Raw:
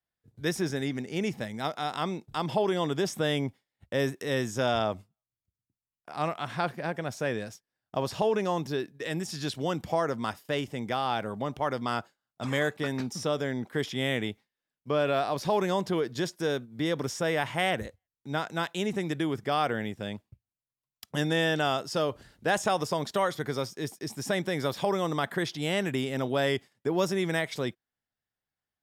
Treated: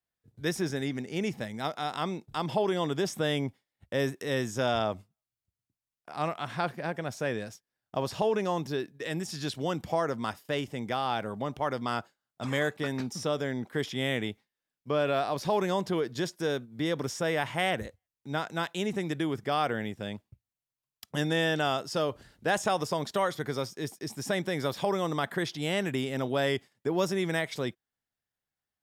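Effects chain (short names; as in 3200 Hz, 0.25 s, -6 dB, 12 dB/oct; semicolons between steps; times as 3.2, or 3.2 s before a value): gain -1 dB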